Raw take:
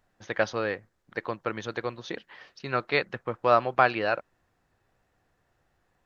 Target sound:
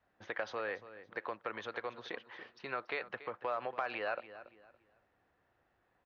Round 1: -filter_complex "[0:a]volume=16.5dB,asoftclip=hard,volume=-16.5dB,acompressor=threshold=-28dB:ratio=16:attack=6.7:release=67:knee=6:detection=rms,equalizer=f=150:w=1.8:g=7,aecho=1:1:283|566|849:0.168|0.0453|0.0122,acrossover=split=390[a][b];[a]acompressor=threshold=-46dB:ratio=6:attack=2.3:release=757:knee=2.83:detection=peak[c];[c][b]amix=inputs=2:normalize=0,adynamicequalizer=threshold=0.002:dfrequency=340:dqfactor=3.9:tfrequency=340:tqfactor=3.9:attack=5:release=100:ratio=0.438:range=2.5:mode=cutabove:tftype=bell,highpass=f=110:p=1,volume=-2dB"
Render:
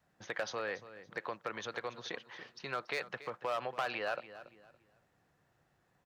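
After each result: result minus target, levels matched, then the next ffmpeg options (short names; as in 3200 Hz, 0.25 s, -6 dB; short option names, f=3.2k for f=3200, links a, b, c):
overloaded stage: distortion +15 dB; 4000 Hz band +4.5 dB; 125 Hz band +4.0 dB
-filter_complex "[0:a]volume=9.5dB,asoftclip=hard,volume=-9.5dB,acompressor=threshold=-28dB:ratio=16:attack=6.7:release=67:knee=6:detection=rms,lowpass=3.1k,equalizer=f=150:w=1.8:g=7,aecho=1:1:283|566|849:0.168|0.0453|0.0122,acrossover=split=390[a][b];[a]acompressor=threshold=-46dB:ratio=6:attack=2.3:release=757:knee=2.83:detection=peak[c];[c][b]amix=inputs=2:normalize=0,adynamicequalizer=threshold=0.002:dfrequency=340:dqfactor=3.9:tfrequency=340:tqfactor=3.9:attack=5:release=100:ratio=0.438:range=2.5:mode=cutabove:tftype=bell,highpass=f=110:p=1,volume=-2dB"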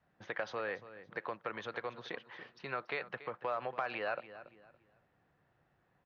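125 Hz band +5.0 dB
-filter_complex "[0:a]volume=9.5dB,asoftclip=hard,volume=-9.5dB,acompressor=threshold=-28dB:ratio=16:attack=6.7:release=67:knee=6:detection=rms,lowpass=3.1k,equalizer=f=150:w=1.8:g=-5,aecho=1:1:283|566|849:0.168|0.0453|0.0122,acrossover=split=390[a][b];[a]acompressor=threshold=-46dB:ratio=6:attack=2.3:release=757:knee=2.83:detection=peak[c];[c][b]amix=inputs=2:normalize=0,adynamicequalizer=threshold=0.002:dfrequency=340:dqfactor=3.9:tfrequency=340:tqfactor=3.9:attack=5:release=100:ratio=0.438:range=2.5:mode=cutabove:tftype=bell,highpass=f=110:p=1,volume=-2dB"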